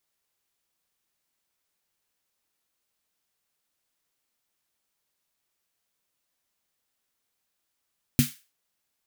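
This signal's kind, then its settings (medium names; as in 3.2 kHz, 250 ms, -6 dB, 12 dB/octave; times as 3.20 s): snare drum length 0.33 s, tones 140 Hz, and 240 Hz, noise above 1.6 kHz, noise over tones -9 dB, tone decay 0.15 s, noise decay 0.33 s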